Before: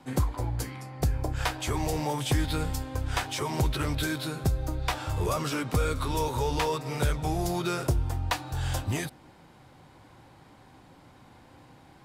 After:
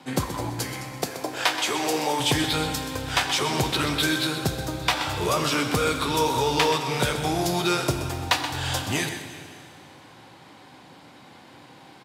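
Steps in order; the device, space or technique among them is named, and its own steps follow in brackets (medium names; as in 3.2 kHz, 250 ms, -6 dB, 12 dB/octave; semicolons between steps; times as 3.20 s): PA in a hall (high-pass 150 Hz 12 dB/octave; peaking EQ 3.5 kHz +6 dB 1.8 oct; delay 127 ms -11 dB; reverberation RT60 2.4 s, pre-delay 27 ms, DRR 7.5 dB); 1.02–2.20 s: high-pass 270 Hz 12 dB/octave; trim +4.5 dB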